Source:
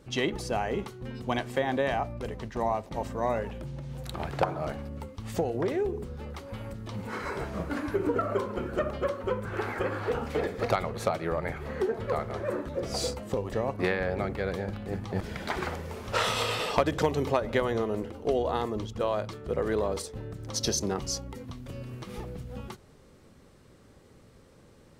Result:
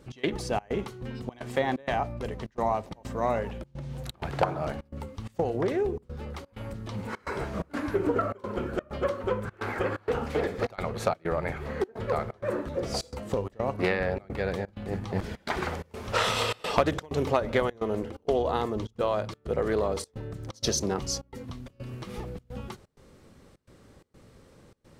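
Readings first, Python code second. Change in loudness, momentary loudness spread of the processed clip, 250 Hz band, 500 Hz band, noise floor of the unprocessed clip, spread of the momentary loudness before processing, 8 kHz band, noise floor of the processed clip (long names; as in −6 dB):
+0.5 dB, 12 LU, +0.5 dB, +0.5 dB, −56 dBFS, 12 LU, −0.5 dB, −61 dBFS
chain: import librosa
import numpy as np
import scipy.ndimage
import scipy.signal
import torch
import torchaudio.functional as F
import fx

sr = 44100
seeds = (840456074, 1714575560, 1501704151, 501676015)

y = fx.step_gate(x, sr, bpm=128, pattern='x.xxx.xxxx', floor_db=-24.0, edge_ms=4.5)
y = fx.doppler_dist(y, sr, depth_ms=0.18)
y = F.gain(torch.from_numpy(y), 1.5).numpy()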